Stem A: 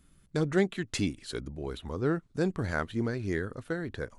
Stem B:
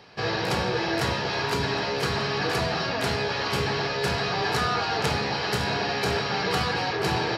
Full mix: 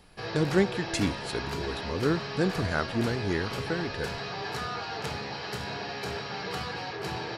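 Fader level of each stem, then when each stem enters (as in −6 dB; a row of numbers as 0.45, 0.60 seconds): +2.0, −9.0 decibels; 0.00, 0.00 seconds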